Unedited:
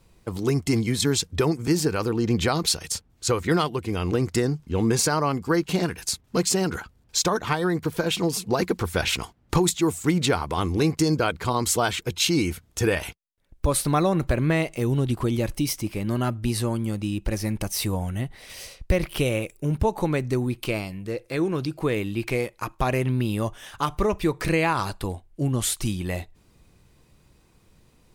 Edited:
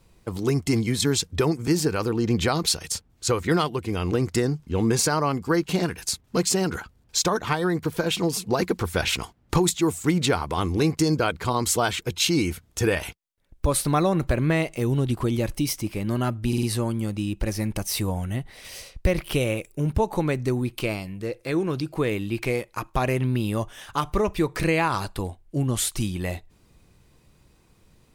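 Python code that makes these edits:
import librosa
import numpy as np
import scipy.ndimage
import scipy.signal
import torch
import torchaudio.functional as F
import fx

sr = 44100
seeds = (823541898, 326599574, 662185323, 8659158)

y = fx.edit(x, sr, fx.stutter(start_s=16.48, slice_s=0.05, count=4), tone=tone)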